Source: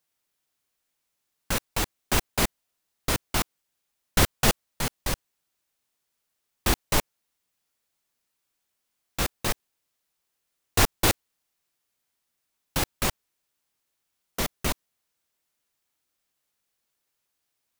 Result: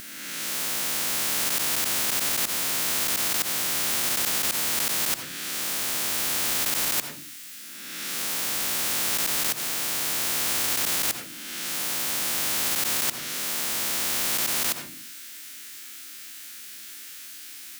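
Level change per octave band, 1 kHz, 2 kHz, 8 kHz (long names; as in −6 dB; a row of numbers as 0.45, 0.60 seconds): −1.0, +3.5, +8.5 decibels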